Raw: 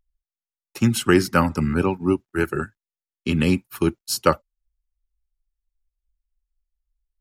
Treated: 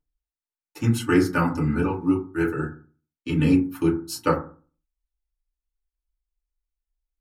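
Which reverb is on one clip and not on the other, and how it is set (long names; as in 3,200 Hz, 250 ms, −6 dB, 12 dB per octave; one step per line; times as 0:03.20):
feedback delay network reverb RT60 0.39 s, low-frequency decay 1.2×, high-frequency decay 0.35×, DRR −5 dB
level −10 dB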